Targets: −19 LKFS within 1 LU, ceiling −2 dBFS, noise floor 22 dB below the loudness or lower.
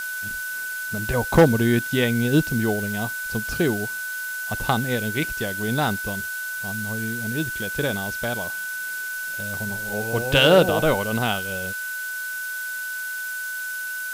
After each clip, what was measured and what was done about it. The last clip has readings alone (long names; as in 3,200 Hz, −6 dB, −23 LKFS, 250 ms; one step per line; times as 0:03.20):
interfering tone 1,500 Hz; level of the tone −28 dBFS; background noise floor −30 dBFS; target noise floor −46 dBFS; integrated loudness −23.5 LKFS; sample peak −4.5 dBFS; target loudness −19.0 LKFS
→ notch filter 1,500 Hz, Q 30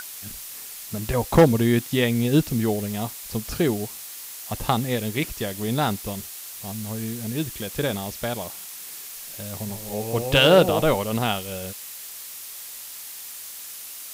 interfering tone none found; background noise floor −38 dBFS; target noise floor −47 dBFS
→ noise reduction from a noise print 9 dB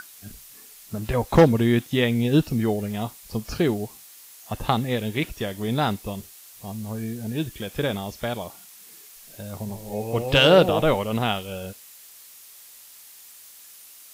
background noise floor −47 dBFS; integrated loudness −23.5 LKFS; sample peak −5.0 dBFS; target loudness −19.0 LKFS
→ level +4.5 dB
brickwall limiter −2 dBFS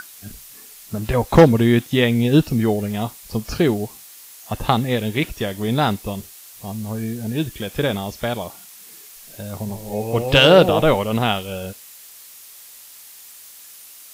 integrated loudness −19.0 LKFS; sample peak −2.0 dBFS; background noise floor −43 dBFS